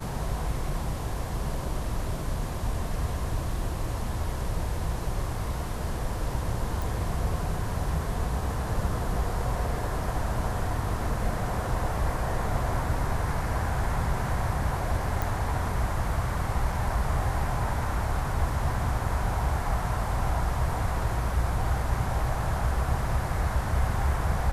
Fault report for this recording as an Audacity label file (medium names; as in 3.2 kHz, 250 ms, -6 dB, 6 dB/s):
6.820000	6.820000	pop
15.220000	15.220000	pop